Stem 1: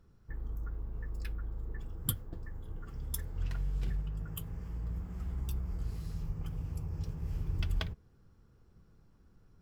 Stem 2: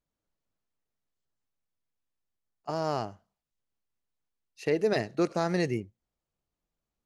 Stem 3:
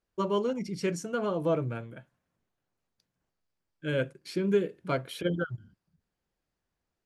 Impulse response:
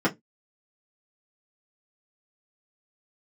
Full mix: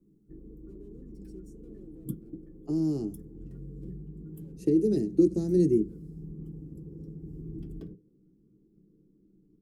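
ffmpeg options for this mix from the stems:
-filter_complex "[0:a]highshelf=f=4k:g=-8.5,flanger=delay=0.8:depth=1.3:regen=58:speed=0.94:shape=triangular,volume=-8dB,asplit=2[a][b];[b]volume=-10dB[c];[1:a]volume=-2.5dB,asplit=3[d][e][f];[e]volume=-21dB[g];[2:a]acompressor=threshold=-31dB:ratio=6,asoftclip=type=hard:threshold=-36.5dB,adelay=500,volume=-20dB[h];[f]apad=whole_len=333331[i];[h][i]sidechaincompress=threshold=-42dB:ratio=8:attack=16:release=144[j];[3:a]atrim=start_sample=2205[k];[c][g]amix=inputs=2:normalize=0[l];[l][k]afir=irnorm=-1:irlink=0[m];[a][d][j][m]amix=inputs=4:normalize=0,acrossover=split=240|3000[n][o][p];[o]acompressor=threshold=-36dB:ratio=4[q];[n][q][p]amix=inputs=3:normalize=0,firequalizer=gain_entry='entry(110,0);entry(180,7);entry(360,14);entry(610,-13);entry(1200,-20);entry(2000,-19);entry(8200,3)':delay=0.05:min_phase=1"

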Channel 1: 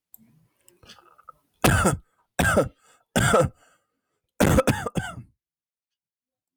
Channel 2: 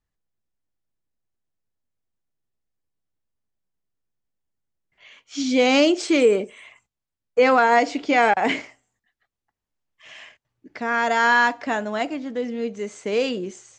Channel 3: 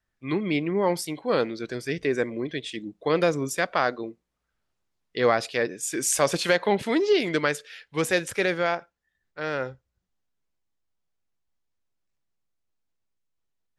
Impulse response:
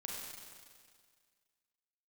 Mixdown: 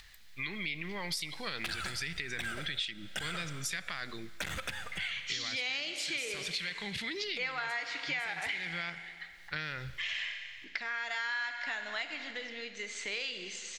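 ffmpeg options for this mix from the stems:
-filter_complex "[0:a]volume=-16dB,asplit=2[a][b];[b]volume=-8.5dB[c];[1:a]acompressor=mode=upward:threshold=-19dB:ratio=2.5,volume=-14.5dB,asplit=3[d][e][f];[e]volume=-3.5dB[g];[2:a]asubboost=boost=6.5:cutoff=230,alimiter=limit=-20dB:level=0:latency=1:release=56,adelay=150,volume=1dB,asplit=2[h][i];[i]volume=-21dB[j];[f]apad=whole_len=614657[k];[h][k]sidechaincompress=threshold=-43dB:ratio=8:attack=16:release=823[l];[a][l]amix=inputs=2:normalize=0,equalizer=f=170:t=o:w=0.77:g=5,alimiter=level_in=1.5dB:limit=-24dB:level=0:latency=1,volume=-1.5dB,volume=0dB[m];[3:a]atrim=start_sample=2205[n];[c][g][j]amix=inputs=3:normalize=0[o];[o][n]afir=irnorm=-1:irlink=0[p];[d][m][p]amix=inputs=3:normalize=0,equalizer=f=125:t=o:w=1:g=-8,equalizer=f=250:t=o:w=1:g=-12,equalizer=f=500:t=o:w=1:g=-7,equalizer=f=1k:t=o:w=1:g=-3,equalizer=f=2k:t=o:w=1:g=10,equalizer=f=4k:t=o:w=1:g=12,acompressor=threshold=-33dB:ratio=6"

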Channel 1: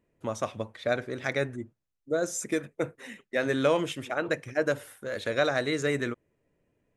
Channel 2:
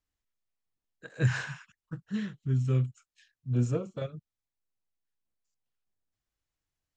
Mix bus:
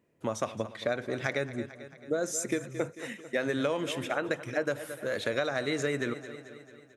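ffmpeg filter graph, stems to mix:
-filter_complex "[0:a]highpass=100,volume=2.5dB,asplit=2[a][b];[b]volume=-17dB[c];[1:a]volume=-19.5dB[d];[c]aecho=0:1:221|442|663|884|1105|1326|1547|1768|1989:1|0.57|0.325|0.185|0.106|0.0602|0.0343|0.0195|0.0111[e];[a][d][e]amix=inputs=3:normalize=0,acompressor=threshold=-26dB:ratio=6"

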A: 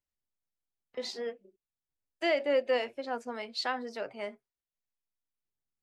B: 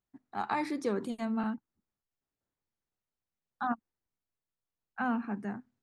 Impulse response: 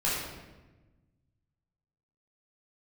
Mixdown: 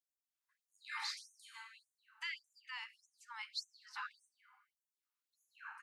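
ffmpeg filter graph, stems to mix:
-filter_complex "[0:a]alimiter=level_in=2dB:limit=-24dB:level=0:latency=1:release=344,volume=-2dB,volume=-3dB,asplit=3[a][b][c];[b]volume=-23dB[d];[1:a]highpass=1.3k,adelay=350,volume=-9dB,asplit=2[e][f];[f]volume=-4dB[g];[c]apad=whole_len=272498[h];[e][h]sidechaincompress=threshold=-39dB:ratio=8:attack=16:release=1480[i];[2:a]atrim=start_sample=2205[j];[d][g]amix=inputs=2:normalize=0[k];[k][j]afir=irnorm=-1:irlink=0[l];[a][i][l]amix=inputs=3:normalize=0,afftfilt=real='re*gte(b*sr/1024,760*pow(6000/760,0.5+0.5*sin(2*PI*1.7*pts/sr)))':imag='im*gte(b*sr/1024,760*pow(6000/760,0.5+0.5*sin(2*PI*1.7*pts/sr)))':win_size=1024:overlap=0.75"

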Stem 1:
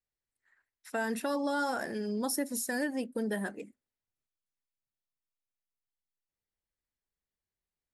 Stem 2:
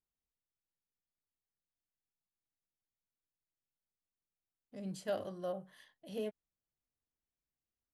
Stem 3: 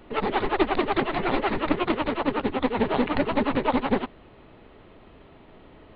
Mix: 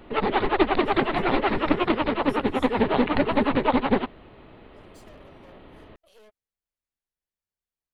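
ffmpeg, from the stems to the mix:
-filter_complex "[0:a]acompressor=threshold=-38dB:ratio=6,aemphasis=mode=reproduction:type=50fm,volume=-4dB[a];[1:a]highpass=f=480:w=0.5412,highpass=f=480:w=1.3066,acompressor=threshold=-41dB:ratio=6,aeval=exprs='(tanh(355*val(0)+0.75)-tanh(0.75))/355':c=same,volume=0dB[b];[2:a]volume=2dB[c];[a][b][c]amix=inputs=3:normalize=0"

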